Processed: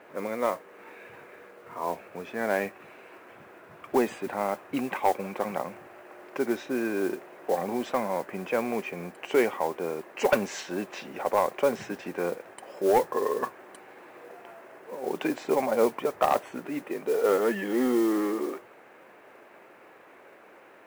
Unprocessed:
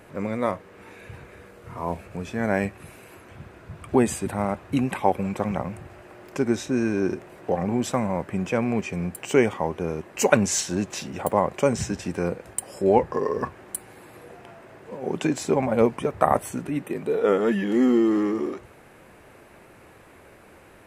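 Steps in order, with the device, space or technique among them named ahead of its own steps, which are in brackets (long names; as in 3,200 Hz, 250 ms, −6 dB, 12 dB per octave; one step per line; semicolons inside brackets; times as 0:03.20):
carbon microphone (band-pass filter 360–2,700 Hz; soft clipping −12.5 dBFS, distortion −16 dB; noise that follows the level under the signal 21 dB)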